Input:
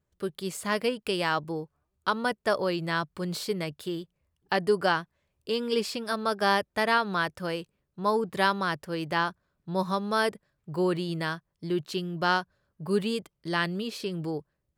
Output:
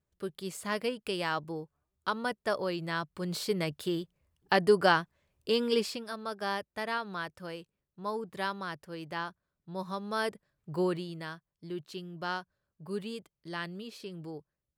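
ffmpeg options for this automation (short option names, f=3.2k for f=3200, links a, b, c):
-af "volume=8dB,afade=t=in:st=3.08:d=0.65:silence=0.501187,afade=t=out:st=5.62:d=0.49:silence=0.298538,afade=t=in:st=9.83:d=0.97:silence=0.446684,afade=t=out:st=10.8:d=0.32:silence=0.421697"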